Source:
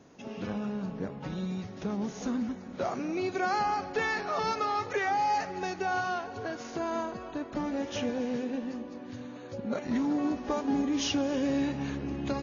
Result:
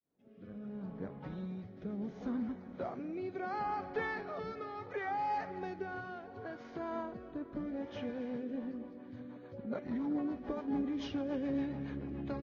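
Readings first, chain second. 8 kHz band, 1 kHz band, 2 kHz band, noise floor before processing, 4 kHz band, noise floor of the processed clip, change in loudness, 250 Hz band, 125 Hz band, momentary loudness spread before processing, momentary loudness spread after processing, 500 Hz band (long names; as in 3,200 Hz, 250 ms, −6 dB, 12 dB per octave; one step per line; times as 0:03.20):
can't be measured, −9.0 dB, −10.0 dB, −44 dBFS, −15.5 dB, −52 dBFS, −8.0 dB, −6.5 dB, −6.5 dB, 9 LU, 10 LU, −7.5 dB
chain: fade in at the beginning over 1.20 s
high-frequency loss of the air 300 metres
rotating-speaker cabinet horn 0.7 Hz, later 7 Hz, at 0:08.16
notch filter 2,700 Hz, Q 9.8
single-tap delay 543 ms −22.5 dB
level −4.5 dB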